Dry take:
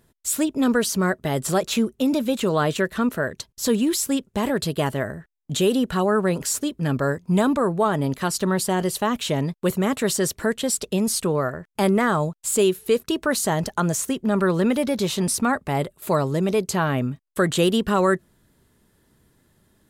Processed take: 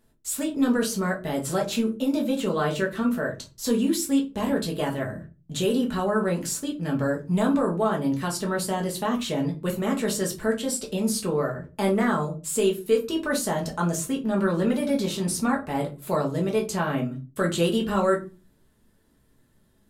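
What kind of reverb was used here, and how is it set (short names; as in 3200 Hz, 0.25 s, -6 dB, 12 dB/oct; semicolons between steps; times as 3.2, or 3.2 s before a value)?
shoebox room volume 120 m³, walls furnished, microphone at 1.5 m; gain -7.5 dB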